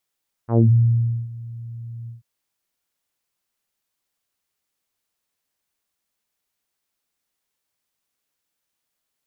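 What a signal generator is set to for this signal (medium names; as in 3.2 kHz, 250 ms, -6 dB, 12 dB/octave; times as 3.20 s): synth note saw A#2 24 dB/octave, low-pass 130 Hz, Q 1.4, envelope 3.5 oct, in 0.22 s, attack 101 ms, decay 0.70 s, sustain -21.5 dB, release 0.14 s, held 1.60 s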